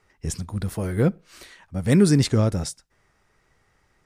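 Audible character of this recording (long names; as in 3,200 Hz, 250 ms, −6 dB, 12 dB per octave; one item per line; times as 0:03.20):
background noise floor −66 dBFS
spectral slope −7.5 dB per octave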